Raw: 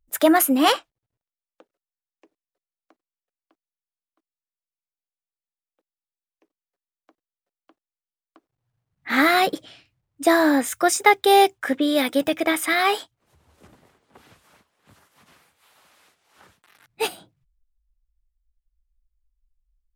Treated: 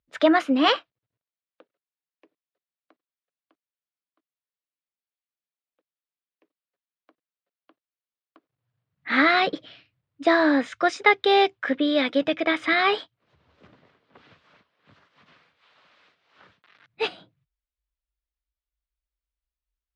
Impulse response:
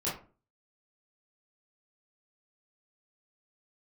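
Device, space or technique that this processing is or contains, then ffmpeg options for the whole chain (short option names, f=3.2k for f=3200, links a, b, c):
guitar cabinet: -filter_complex "[0:a]asettb=1/sr,asplit=3[a][b][c];[a]atrim=end=12.604[d];[b]atrim=start=12.6:end=13,asetpts=PTS-STARTPTS,afade=t=in:d=0.004:c=qsin,afade=t=out:st=0.396:d=0.004:c=qsin,lowshelf=f=240:g=11[e];[c]atrim=start=12.996[f];[d][e]acrossfade=d=0.004:c1=hsin:c2=qsin[g];[g][f]acrossfade=d=0.004:c1=qsin:c2=hsin,highpass=110,equalizer=f=220:t=q:w=4:g=-3,equalizer=f=360:t=q:w=4:g=-4,equalizer=f=820:t=q:w=4:g=-6,lowpass=f=4.3k:w=0.5412,lowpass=f=4.3k:w=1.3066"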